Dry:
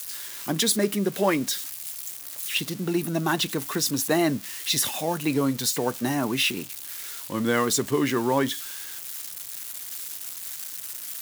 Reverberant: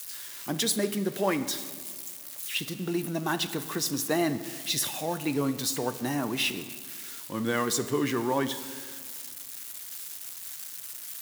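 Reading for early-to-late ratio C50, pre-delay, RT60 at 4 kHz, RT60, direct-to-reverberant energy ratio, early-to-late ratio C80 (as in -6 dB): 12.5 dB, 11 ms, 1.3 s, 1.9 s, 11.0 dB, 13.5 dB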